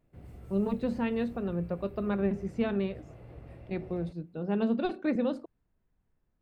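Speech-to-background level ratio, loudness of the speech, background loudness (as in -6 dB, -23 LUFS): 17.5 dB, -32.0 LUFS, -49.5 LUFS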